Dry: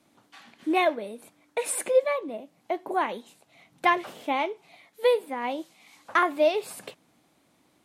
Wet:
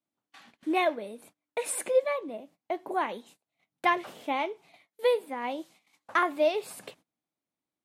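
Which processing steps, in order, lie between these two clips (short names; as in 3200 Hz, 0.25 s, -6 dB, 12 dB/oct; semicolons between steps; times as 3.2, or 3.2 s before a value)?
gate -52 dBFS, range -24 dB; gain -3 dB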